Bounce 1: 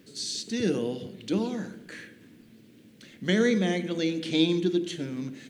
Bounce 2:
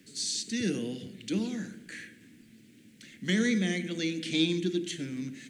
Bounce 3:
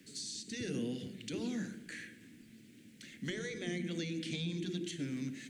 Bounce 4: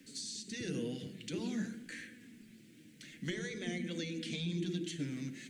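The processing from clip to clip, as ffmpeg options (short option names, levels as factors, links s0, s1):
-filter_complex "[0:a]equalizer=f=250:t=o:w=1:g=3,equalizer=f=500:t=o:w=1:g=-5,equalizer=f=1000:t=o:w=1:g=-9,equalizer=f=2000:t=o:w=1:g=7,equalizer=f=8000:t=o:w=1:g=8,acrossover=split=130|480|2600[s0][s1][s2][s3];[s2]asoftclip=type=tanh:threshold=0.0422[s4];[s0][s1][s4][s3]amix=inputs=4:normalize=0,volume=0.668"
-filter_complex "[0:a]afftfilt=real='re*lt(hypot(re,im),0.282)':imag='im*lt(hypot(re,im),0.282)':win_size=1024:overlap=0.75,acrossover=split=350[s0][s1];[s1]acompressor=threshold=0.00891:ratio=4[s2];[s0][s2]amix=inputs=2:normalize=0,volume=0.841"
-af "flanger=delay=3.8:depth=2.7:regen=49:speed=0.5:shape=sinusoidal,volume=1.58"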